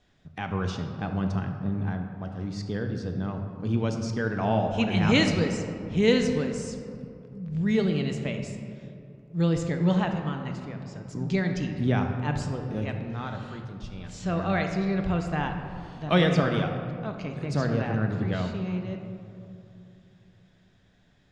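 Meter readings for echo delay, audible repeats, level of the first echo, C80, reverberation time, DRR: none, none, none, 7.0 dB, 2.9 s, 4.0 dB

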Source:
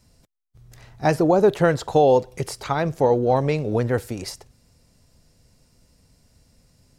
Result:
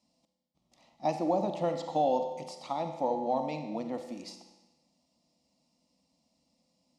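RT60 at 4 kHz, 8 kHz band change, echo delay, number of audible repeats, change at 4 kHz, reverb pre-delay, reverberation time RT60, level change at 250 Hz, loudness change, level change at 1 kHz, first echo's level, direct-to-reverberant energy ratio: 1.1 s, -15.0 dB, none, none, -10.5 dB, 38 ms, 1.1 s, -11.0 dB, -11.5 dB, -7.5 dB, none, 7.0 dB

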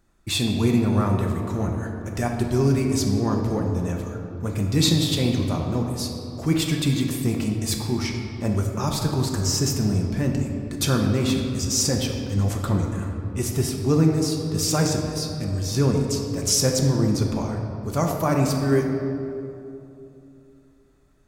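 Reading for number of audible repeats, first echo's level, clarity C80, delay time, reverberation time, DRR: none, none, 4.5 dB, none, 2.8 s, 1.0 dB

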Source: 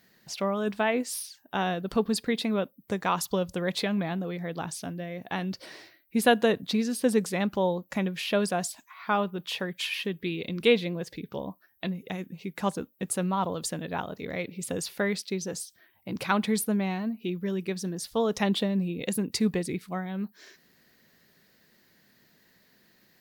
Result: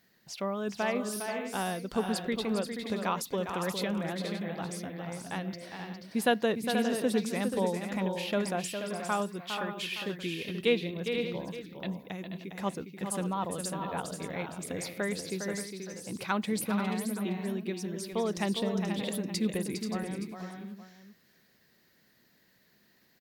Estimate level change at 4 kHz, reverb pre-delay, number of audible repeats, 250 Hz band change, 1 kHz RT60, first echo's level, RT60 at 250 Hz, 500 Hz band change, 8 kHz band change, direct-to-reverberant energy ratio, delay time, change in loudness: -3.5 dB, none, 4, -3.5 dB, none, -7.5 dB, none, -3.5 dB, -3.5 dB, none, 0.407 s, -3.5 dB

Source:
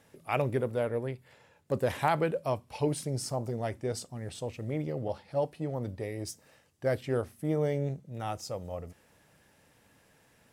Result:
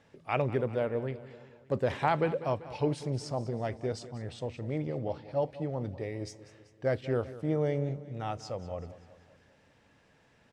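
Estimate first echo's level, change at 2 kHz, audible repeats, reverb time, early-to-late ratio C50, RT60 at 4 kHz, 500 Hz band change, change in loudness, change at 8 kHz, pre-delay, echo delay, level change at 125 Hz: -16.0 dB, -0.5 dB, 4, none, none, none, 0.0 dB, 0.0 dB, -9.0 dB, none, 0.193 s, 0.0 dB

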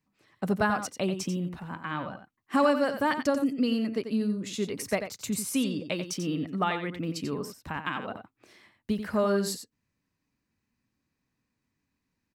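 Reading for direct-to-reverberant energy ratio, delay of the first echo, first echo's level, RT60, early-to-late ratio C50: none, 90 ms, -9.0 dB, none, none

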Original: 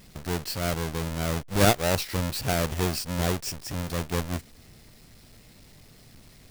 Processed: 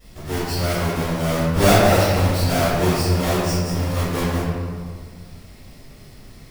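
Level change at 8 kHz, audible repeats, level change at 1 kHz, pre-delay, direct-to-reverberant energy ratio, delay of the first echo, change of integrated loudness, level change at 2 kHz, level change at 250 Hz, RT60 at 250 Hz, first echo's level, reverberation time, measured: +4.0 dB, none, +9.0 dB, 3 ms, -16.5 dB, none, +7.5 dB, +7.0 dB, +8.5 dB, 2.0 s, none, 1.9 s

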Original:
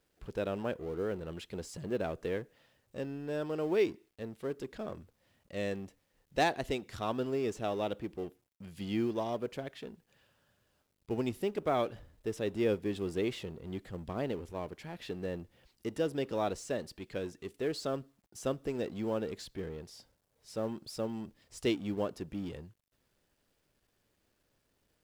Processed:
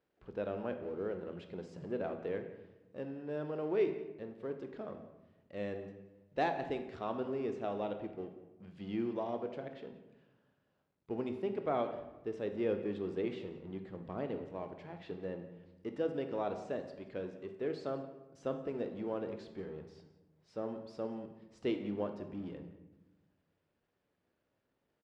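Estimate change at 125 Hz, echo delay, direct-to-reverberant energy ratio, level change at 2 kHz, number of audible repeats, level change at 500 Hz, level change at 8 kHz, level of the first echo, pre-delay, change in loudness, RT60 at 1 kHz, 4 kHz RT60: -6.0 dB, 0.179 s, 6.5 dB, -6.0 dB, 1, -2.5 dB, under -15 dB, -18.0 dB, 21 ms, -3.0 dB, 0.90 s, 0.65 s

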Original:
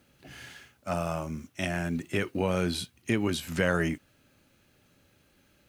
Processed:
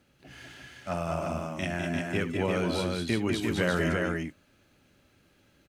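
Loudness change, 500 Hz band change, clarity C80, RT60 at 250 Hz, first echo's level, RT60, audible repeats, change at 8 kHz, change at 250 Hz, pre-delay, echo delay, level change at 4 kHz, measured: +0.5 dB, +1.0 dB, none, none, -14.5 dB, none, 3, -2.0 dB, +1.0 dB, none, 72 ms, +0.5 dB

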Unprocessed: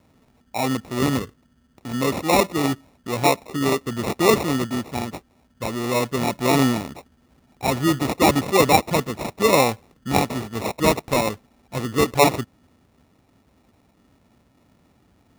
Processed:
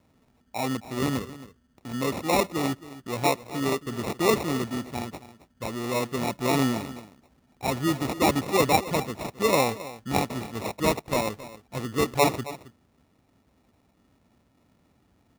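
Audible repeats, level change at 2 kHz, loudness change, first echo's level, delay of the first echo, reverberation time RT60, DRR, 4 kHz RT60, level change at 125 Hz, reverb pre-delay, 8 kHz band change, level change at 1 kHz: 1, -5.5 dB, -5.5 dB, -16.0 dB, 0.27 s, none, none, none, -5.5 dB, none, -5.5 dB, -5.5 dB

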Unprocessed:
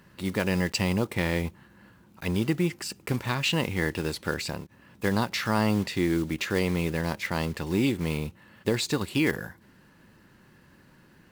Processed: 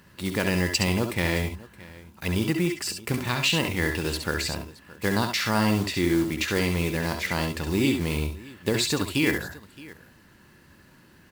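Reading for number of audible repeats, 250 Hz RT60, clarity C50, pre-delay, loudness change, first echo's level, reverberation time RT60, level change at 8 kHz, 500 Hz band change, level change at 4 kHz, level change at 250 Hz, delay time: 2, none, none, none, +2.5 dB, -5.5 dB, none, +5.5 dB, +1.0 dB, +4.5 dB, +1.5 dB, 66 ms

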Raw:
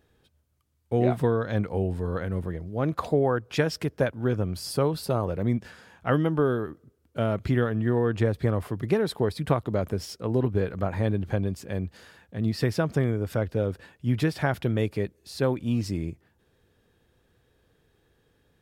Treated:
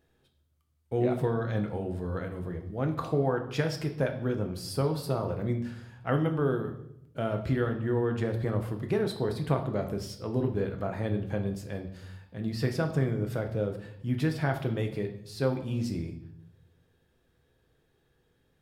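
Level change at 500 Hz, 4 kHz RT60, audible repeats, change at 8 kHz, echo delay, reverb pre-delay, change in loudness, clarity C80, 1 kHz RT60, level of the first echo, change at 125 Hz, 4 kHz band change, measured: -4.0 dB, 0.70 s, none, -4.5 dB, none, 6 ms, -3.5 dB, 13.0 dB, 0.65 s, none, -3.5 dB, -4.0 dB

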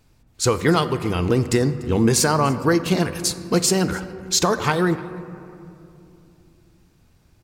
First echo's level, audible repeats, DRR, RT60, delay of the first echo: -22.0 dB, 1, 10.5 dB, 2.8 s, 0.293 s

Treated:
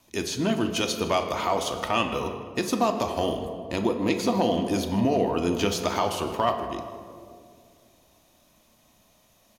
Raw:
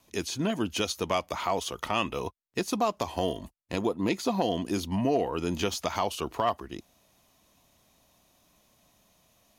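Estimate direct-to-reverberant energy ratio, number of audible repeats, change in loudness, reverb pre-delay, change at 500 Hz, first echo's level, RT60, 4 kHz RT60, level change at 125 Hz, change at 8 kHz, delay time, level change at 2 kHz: 5.0 dB, 2, +4.0 dB, 3 ms, +4.0 dB, -18.5 dB, 2.2 s, 1.1 s, +3.5 dB, +3.0 dB, 0.156 s, +3.5 dB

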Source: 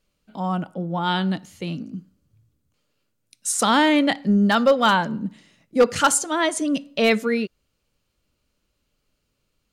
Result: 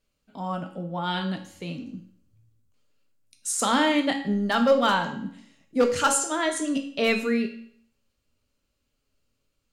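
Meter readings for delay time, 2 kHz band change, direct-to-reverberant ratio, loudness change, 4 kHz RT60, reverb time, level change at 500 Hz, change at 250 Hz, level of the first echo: none, -4.0 dB, 4.0 dB, -4.0 dB, 0.55 s, 0.60 s, -3.5 dB, -4.5 dB, none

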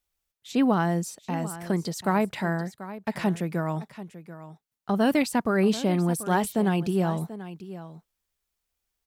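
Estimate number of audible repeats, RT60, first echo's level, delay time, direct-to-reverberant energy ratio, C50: 1, none, -14.5 dB, 0.737 s, none, none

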